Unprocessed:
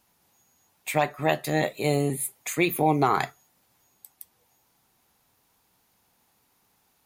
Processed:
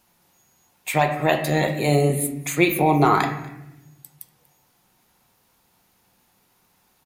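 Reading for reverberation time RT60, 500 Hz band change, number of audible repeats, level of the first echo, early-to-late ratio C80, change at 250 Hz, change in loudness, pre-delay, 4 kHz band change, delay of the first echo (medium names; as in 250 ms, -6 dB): 0.90 s, +5.0 dB, 1, -22.5 dB, 10.0 dB, +5.5 dB, +5.0 dB, 6 ms, +4.5 dB, 240 ms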